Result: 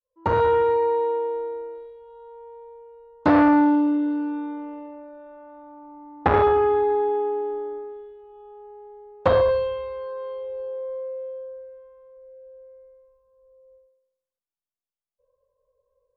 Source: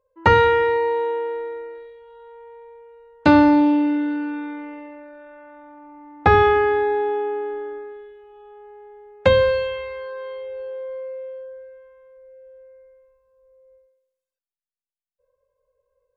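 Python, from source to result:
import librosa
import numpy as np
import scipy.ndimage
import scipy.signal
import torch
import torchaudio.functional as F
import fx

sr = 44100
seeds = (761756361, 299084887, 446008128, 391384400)

y = fx.fade_in_head(x, sr, length_s=0.53)
y = fx.curve_eq(y, sr, hz=(1100.0, 1900.0, 3100.0), db=(0, -17, -8))
y = fx.transformer_sat(y, sr, knee_hz=760.0)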